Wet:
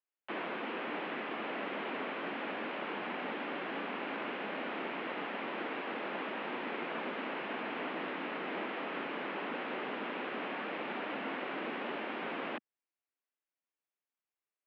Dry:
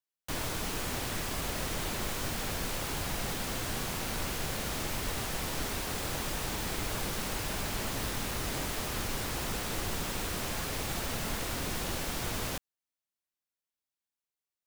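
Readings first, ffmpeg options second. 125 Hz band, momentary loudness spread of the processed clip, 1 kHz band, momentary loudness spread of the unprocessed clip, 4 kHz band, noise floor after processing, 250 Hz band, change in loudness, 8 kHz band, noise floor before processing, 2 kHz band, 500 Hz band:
-19.0 dB, 1 LU, 0.0 dB, 0 LU, -9.5 dB, under -85 dBFS, -1.5 dB, -4.5 dB, under -40 dB, under -85 dBFS, 0.0 dB, +0.5 dB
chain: -af "highpass=f=180:t=q:w=0.5412,highpass=f=180:t=q:w=1.307,lowpass=f=2800:t=q:w=0.5176,lowpass=f=2800:t=q:w=0.7071,lowpass=f=2800:t=q:w=1.932,afreqshift=51"

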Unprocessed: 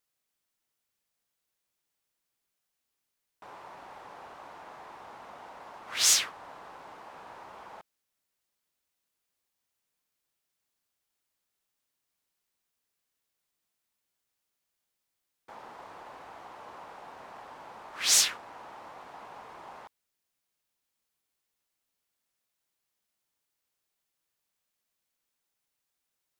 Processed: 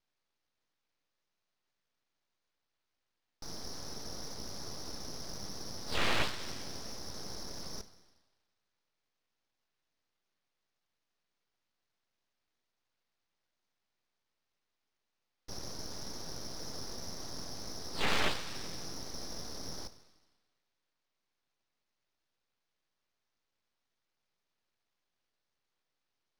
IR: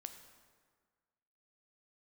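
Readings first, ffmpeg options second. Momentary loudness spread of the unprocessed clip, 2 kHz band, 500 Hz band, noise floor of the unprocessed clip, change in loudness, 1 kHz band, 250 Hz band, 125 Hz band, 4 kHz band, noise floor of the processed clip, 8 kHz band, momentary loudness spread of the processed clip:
15 LU, -0.5 dB, +4.5 dB, -84 dBFS, -15.5 dB, -1.5 dB, +11.0 dB, no reading, -6.5 dB, -85 dBFS, -14.5 dB, 13 LU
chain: -filter_complex "[0:a]lowpass=f=3100:t=q:w=0.5098,lowpass=f=3100:t=q:w=0.6013,lowpass=f=3100:t=q:w=0.9,lowpass=f=3100:t=q:w=2.563,afreqshift=-3600,asplit=2[s0][s1];[1:a]atrim=start_sample=2205[s2];[s1][s2]afir=irnorm=-1:irlink=0,volume=3.16[s3];[s0][s3]amix=inputs=2:normalize=0,aeval=exprs='abs(val(0))':c=same,volume=0.794"

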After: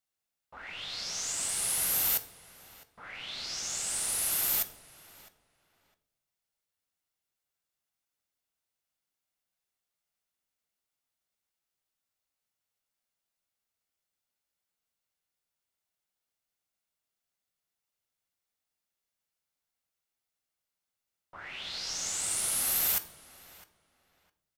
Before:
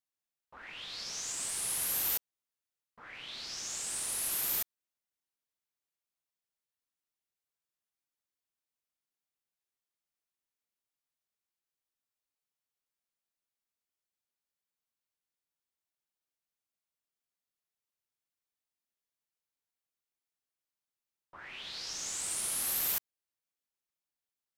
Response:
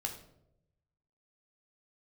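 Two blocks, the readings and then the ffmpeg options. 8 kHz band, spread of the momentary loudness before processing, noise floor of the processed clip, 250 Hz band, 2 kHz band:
+4.0 dB, 15 LU, under -85 dBFS, +3.5 dB, +4.0 dB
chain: -filter_complex "[0:a]asplit=2[s0][s1];[s1]adelay=658,lowpass=f=3100:p=1,volume=0.141,asplit=2[s2][s3];[s3]adelay=658,lowpass=f=3100:p=1,volume=0.22[s4];[s0][s2][s4]amix=inputs=3:normalize=0,asplit=2[s5][s6];[1:a]atrim=start_sample=2205[s7];[s6][s7]afir=irnorm=-1:irlink=0,volume=0.708[s8];[s5][s8]amix=inputs=2:normalize=0"

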